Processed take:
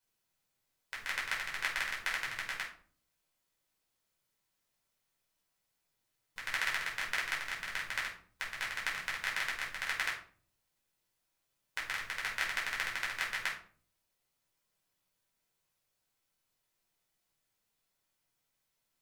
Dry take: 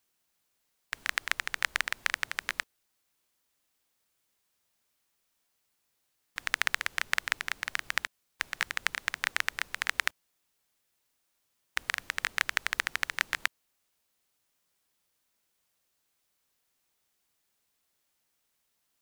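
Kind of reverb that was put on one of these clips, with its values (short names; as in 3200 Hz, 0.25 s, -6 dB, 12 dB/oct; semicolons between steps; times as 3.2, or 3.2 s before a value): shoebox room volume 400 m³, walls furnished, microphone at 4.9 m; gain -11.5 dB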